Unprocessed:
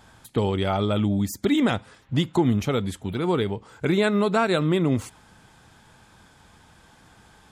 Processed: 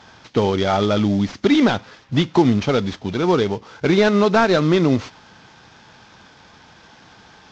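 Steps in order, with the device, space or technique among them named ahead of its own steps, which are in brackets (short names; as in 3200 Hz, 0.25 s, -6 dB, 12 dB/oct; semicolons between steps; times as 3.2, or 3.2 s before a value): early wireless headset (HPF 170 Hz 6 dB/oct; CVSD 32 kbps); gain +7.5 dB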